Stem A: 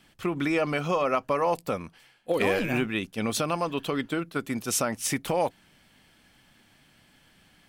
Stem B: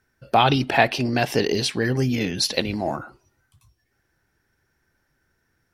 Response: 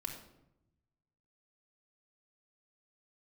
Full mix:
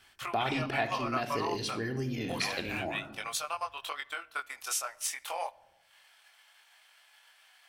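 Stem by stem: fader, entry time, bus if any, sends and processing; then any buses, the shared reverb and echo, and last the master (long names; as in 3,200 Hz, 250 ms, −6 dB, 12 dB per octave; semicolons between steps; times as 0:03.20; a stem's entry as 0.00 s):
+2.5 dB, 0.00 s, send −15 dB, high-pass filter 740 Hz 24 dB per octave; transient designer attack +5 dB, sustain −10 dB; chorus effect 0.28 Hz, delay 20 ms, depth 3.6 ms
−1.5 dB, 0.00 s, send −7.5 dB, automatic ducking −10 dB, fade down 0.20 s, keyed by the first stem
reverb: on, RT60 0.85 s, pre-delay 3 ms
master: downward compressor 1.5 to 1, threshold −43 dBFS, peak gain reduction 9.5 dB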